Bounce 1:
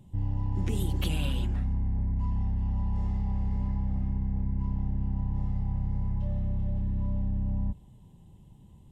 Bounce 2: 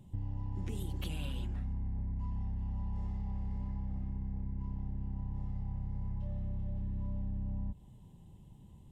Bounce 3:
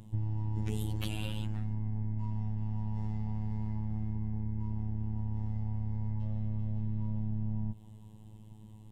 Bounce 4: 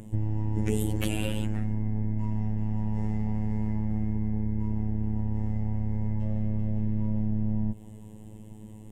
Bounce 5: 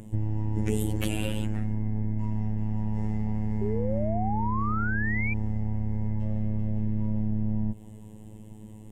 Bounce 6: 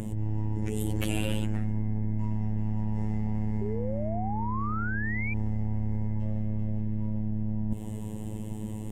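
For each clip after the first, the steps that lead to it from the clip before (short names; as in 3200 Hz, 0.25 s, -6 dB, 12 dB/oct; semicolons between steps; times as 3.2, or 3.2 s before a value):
compressor 5:1, threshold -32 dBFS, peak gain reduction 8.5 dB; gain -2 dB
robotiser 107 Hz; gain +6.5 dB
graphic EQ 125/250/500/1000/2000/4000/8000 Hz -4/+3/+7/-5/+6/-9/+6 dB; gain +7 dB
painted sound rise, 3.61–5.34, 390–2400 Hz -32 dBFS
negative-ratio compressor -32 dBFS, ratio -1; gain +4 dB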